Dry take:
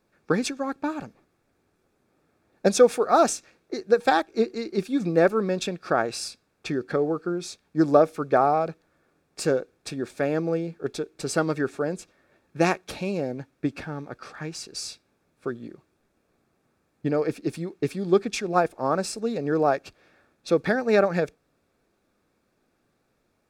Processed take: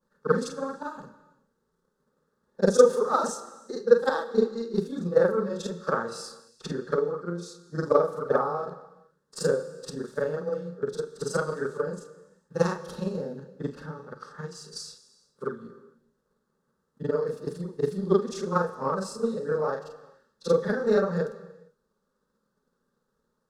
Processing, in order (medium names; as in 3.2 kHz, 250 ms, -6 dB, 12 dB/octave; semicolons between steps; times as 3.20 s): short-time spectra conjugated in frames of 104 ms; treble shelf 8 kHz -7.5 dB; static phaser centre 470 Hz, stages 8; transient shaper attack +7 dB, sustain 0 dB; gated-style reverb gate 480 ms falling, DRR 11.5 dB